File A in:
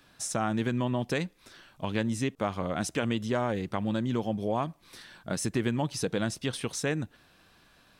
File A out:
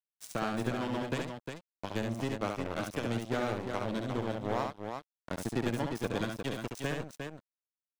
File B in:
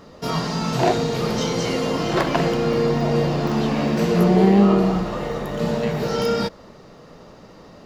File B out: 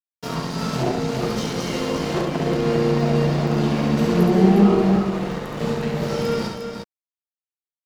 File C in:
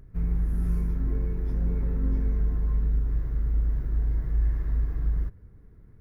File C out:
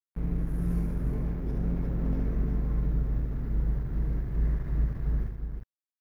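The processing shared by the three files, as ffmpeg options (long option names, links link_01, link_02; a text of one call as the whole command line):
ffmpeg -i in.wav -filter_complex "[0:a]acrossover=split=210|520[link_01][link_02][link_03];[link_03]alimiter=limit=-20dB:level=0:latency=1:release=352[link_04];[link_01][link_02][link_04]amix=inputs=3:normalize=0,aeval=exprs='sgn(val(0))*max(abs(val(0))-0.0299,0)':channel_layout=same,aecho=1:1:69|355:0.596|0.501" out.wav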